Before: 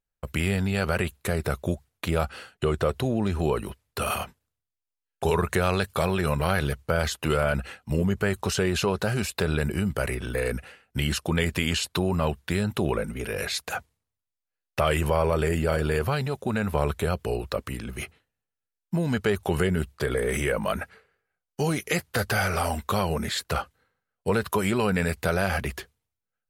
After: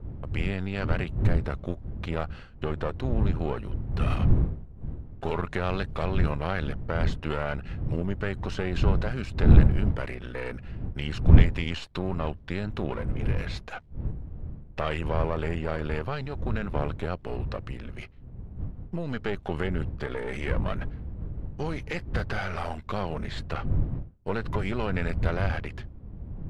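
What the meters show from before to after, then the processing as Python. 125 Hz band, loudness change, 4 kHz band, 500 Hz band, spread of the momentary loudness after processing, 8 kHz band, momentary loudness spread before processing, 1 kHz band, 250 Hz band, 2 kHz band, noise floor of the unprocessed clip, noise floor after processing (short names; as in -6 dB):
+1.5 dB, -2.5 dB, -8.5 dB, -6.0 dB, 12 LU, under -20 dB, 8 LU, -5.5 dB, -3.0 dB, -6.0 dB, under -85 dBFS, -45 dBFS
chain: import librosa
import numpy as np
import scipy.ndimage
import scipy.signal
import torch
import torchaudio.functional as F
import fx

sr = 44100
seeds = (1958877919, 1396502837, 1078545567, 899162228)

y = np.where(x < 0.0, 10.0 ** (-12.0 / 20.0) * x, x)
y = fx.dmg_wind(y, sr, seeds[0], corner_hz=97.0, level_db=-24.0)
y = scipy.signal.sosfilt(scipy.signal.butter(2, 3600.0, 'lowpass', fs=sr, output='sos'), y)
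y = F.gain(torch.from_numpy(y), -3.5).numpy()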